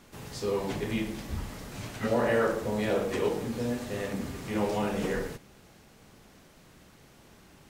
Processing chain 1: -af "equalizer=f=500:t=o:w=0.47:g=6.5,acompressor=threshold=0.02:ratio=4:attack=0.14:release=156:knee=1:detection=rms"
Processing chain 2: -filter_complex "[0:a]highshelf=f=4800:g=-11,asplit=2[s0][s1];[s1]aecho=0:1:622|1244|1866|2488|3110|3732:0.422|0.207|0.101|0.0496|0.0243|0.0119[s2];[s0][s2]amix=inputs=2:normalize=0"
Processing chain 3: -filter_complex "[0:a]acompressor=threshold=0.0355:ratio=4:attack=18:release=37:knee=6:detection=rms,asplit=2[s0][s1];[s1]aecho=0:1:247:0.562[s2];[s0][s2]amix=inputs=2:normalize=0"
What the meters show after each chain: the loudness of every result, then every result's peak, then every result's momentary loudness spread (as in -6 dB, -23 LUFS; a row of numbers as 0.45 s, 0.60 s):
-39.5 LUFS, -31.0 LUFS, -32.5 LUFS; -28.5 dBFS, -14.5 dBFS, -18.0 dBFS; 17 LU, 17 LU, 10 LU